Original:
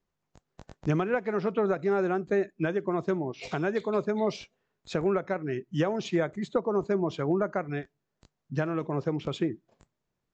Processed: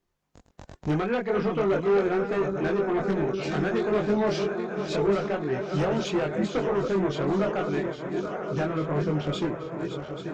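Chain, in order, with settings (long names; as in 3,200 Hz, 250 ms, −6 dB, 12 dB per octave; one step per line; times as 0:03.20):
feedback delay that plays each chunk backwards 419 ms, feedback 81%, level −10 dB
harmonic generator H 5 −11 dB, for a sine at −13.5 dBFS
multi-voice chorus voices 4, 0.29 Hz, delay 23 ms, depth 2.9 ms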